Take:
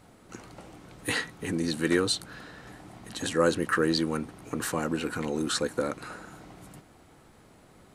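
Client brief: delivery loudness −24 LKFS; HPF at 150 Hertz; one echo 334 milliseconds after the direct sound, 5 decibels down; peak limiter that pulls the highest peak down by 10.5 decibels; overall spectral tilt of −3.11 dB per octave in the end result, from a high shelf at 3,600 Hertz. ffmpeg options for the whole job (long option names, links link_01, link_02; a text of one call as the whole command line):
ffmpeg -i in.wav -af "highpass=150,highshelf=frequency=3600:gain=6,alimiter=limit=-20.5dB:level=0:latency=1,aecho=1:1:334:0.562,volume=7dB" out.wav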